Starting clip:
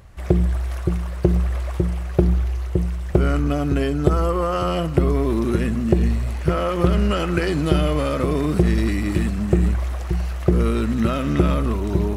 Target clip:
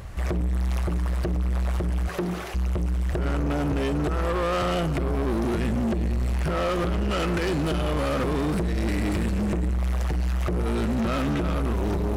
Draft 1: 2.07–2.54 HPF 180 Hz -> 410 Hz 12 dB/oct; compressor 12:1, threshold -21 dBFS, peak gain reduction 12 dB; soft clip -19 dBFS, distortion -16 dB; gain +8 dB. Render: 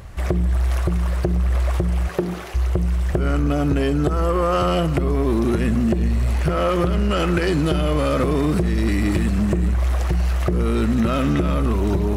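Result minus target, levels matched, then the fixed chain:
soft clip: distortion -9 dB
2.07–2.54 HPF 180 Hz -> 410 Hz 12 dB/oct; compressor 12:1, threshold -21 dBFS, peak gain reduction 12 dB; soft clip -30 dBFS, distortion -8 dB; gain +8 dB

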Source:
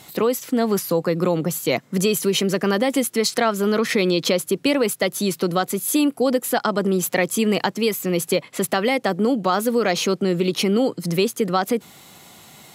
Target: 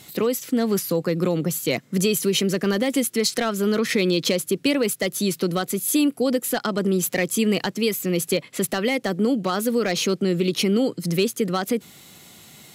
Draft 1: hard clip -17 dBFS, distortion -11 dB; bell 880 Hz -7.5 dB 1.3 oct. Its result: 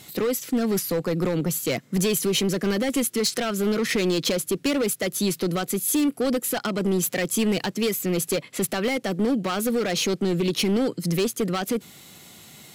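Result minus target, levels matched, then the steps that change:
hard clip: distortion +14 dB
change: hard clip -10.5 dBFS, distortion -25 dB

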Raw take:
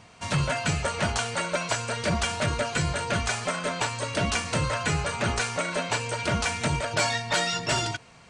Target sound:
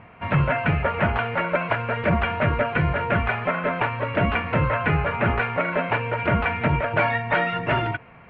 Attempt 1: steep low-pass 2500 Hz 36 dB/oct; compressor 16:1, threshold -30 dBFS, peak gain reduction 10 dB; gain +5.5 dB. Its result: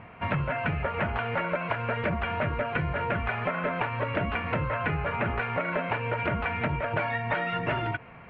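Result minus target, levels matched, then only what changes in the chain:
compressor: peak gain reduction +10 dB
remove: compressor 16:1, threshold -30 dBFS, peak gain reduction 10 dB

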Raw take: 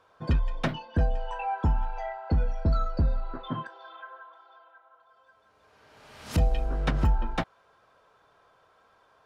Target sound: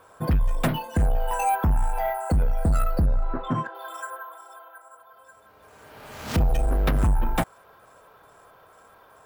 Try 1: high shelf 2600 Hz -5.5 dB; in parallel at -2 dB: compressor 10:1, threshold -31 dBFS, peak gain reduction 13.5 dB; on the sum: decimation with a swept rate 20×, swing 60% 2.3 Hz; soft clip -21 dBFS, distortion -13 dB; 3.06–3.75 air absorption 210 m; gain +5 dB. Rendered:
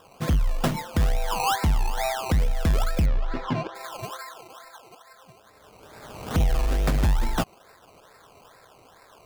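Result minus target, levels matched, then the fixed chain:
decimation with a swept rate: distortion +13 dB; compressor: peak gain reduction +6 dB
high shelf 2600 Hz -5.5 dB; in parallel at -2 dB: compressor 10:1, threshold -24.5 dBFS, peak gain reduction 7.5 dB; on the sum: decimation with a swept rate 4×, swing 60% 2.3 Hz; soft clip -21 dBFS, distortion -11 dB; 3.06–3.75 air absorption 210 m; gain +5 dB

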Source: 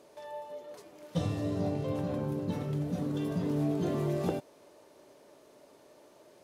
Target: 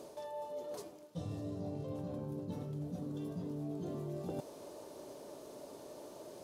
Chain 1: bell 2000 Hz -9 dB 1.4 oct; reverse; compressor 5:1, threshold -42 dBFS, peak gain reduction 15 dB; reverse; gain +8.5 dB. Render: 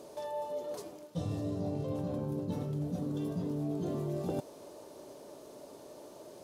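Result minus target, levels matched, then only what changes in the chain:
compressor: peak gain reduction -6 dB
change: compressor 5:1, threshold -49.5 dBFS, peak gain reduction 21 dB

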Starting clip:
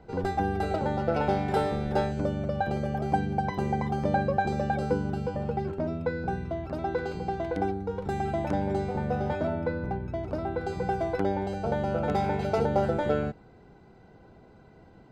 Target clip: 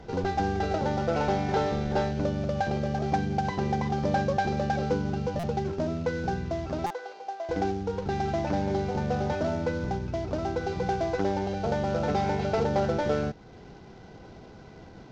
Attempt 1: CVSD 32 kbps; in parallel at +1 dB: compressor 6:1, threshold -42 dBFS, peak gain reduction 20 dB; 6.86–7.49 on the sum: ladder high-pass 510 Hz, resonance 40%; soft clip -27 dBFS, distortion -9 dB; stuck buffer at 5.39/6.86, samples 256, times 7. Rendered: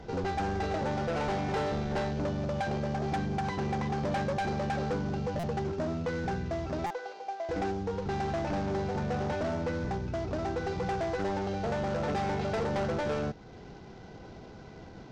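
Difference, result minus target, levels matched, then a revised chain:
soft clip: distortion +13 dB
CVSD 32 kbps; in parallel at +1 dB: compressor 6:1, threshold -42 dBFS, peak gain reduction 20 dB; 6.86–7.49 on the sum: ladder high-pass 510 Hz, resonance 40%; soft clip -15.5 dBFS, distortion -22 dB; stuck buffer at 5.39/6.86, samples 256, times 7

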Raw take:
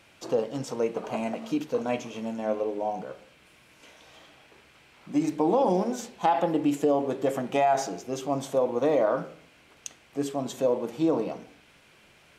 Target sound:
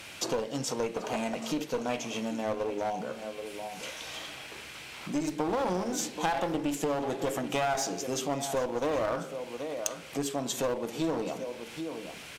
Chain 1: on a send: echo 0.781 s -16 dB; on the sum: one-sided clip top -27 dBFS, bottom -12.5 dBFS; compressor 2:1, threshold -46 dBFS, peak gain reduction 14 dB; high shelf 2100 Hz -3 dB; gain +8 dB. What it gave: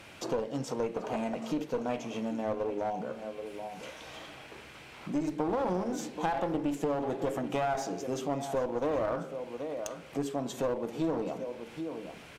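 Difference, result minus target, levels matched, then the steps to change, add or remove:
4000 Hz band -7.5 dB
change: high shelf 2100 Hz +8.5 dB

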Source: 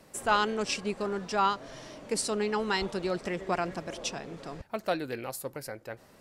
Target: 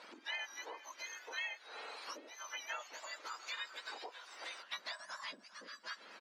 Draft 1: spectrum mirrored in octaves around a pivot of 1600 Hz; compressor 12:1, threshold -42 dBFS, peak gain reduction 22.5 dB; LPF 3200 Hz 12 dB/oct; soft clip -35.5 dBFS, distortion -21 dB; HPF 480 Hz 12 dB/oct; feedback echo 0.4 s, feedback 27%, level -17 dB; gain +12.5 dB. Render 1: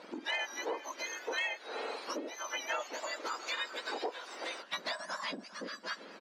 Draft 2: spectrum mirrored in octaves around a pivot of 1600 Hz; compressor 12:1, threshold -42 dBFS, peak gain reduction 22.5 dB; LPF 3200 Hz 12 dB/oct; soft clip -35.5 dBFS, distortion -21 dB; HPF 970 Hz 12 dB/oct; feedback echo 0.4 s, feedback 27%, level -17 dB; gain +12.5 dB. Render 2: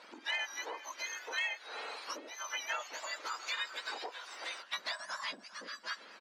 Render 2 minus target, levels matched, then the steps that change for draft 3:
compressor: peak gain reduction -6.5 dB
change: compressor 12:1, threshold -49 dBFS, peak gain reduction 29 dB

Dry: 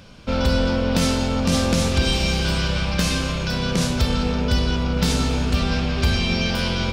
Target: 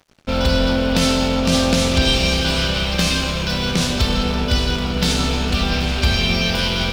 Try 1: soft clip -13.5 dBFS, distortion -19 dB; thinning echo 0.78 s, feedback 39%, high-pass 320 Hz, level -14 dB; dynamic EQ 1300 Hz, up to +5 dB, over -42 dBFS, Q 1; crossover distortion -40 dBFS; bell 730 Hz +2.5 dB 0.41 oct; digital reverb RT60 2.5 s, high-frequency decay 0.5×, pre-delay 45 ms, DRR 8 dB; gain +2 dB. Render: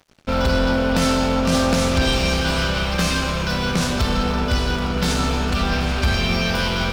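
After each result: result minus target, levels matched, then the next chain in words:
soft clip: distortion +18 dB; 1000 Hz band +4.0 dB
soft clip -3 dBFS, distortion -36 dB; thinning echo 0.78 s, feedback 39%, high-pass 320 Hz, level -14 dB; dynamic EQ 1300 Hz, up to +5 dB, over -42 dBFS, Q 1; crossover distortion -40 dBFS; bell 730 Hz +2.5 dB 0.41 oct; digital reverb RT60 2.5 s, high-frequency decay 0.5×, pre-delay 45 ms, DRR 8 dB; gain +2 dB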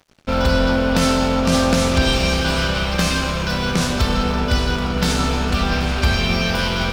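1000 Hz band +3.5 dB
soft clip -3 dBFS, distortion -36 dB; thinning echo 0.78 s, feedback 39%, high-pass 320 Hz, level -14 dB; dynamic EQ 3400 Hz, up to +5 dB, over -42 dBFS, Q 1; crossover distortion -40 dBFS; bell 730 Hz +2.5 dB 0.41 oct; digital reverb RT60 2.5 s, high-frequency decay 0.5×, pre-delay 45 ms, DRR 8 dB; gain +2 dB

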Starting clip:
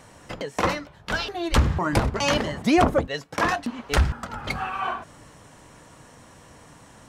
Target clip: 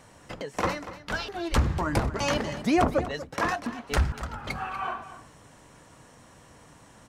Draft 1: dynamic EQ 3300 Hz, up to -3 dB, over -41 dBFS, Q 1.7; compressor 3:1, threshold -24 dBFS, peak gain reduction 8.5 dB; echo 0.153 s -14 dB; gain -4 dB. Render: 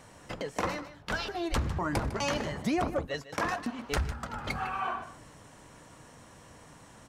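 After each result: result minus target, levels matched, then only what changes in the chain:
compressor: peak gain reduction +8.5 dB; echo 87 ms early
remove: compressor 3:1, threshold -24 dBFS, peak gain reduction 8.5 dB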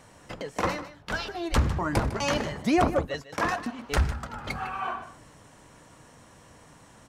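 echo 87 ms early
change: echo 0.24 s -14 dB

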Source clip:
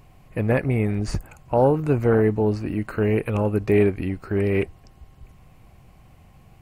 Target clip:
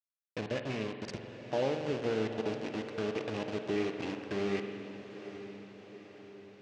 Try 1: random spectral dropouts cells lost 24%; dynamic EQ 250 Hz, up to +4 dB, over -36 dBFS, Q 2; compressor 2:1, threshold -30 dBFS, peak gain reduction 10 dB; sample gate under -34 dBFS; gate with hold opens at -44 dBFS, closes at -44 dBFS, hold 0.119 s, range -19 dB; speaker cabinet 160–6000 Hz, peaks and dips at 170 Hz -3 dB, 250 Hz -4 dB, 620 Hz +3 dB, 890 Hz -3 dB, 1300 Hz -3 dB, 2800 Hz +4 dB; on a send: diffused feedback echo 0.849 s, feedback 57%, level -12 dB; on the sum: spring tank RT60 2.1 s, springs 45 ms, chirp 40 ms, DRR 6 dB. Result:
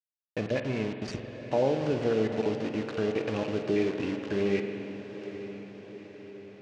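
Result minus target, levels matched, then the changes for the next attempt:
compressor: peak gain reduction -5.5 dB
change: compressor 2:1, threshold -41 dBFS, peak gain reduction 15.5 dB

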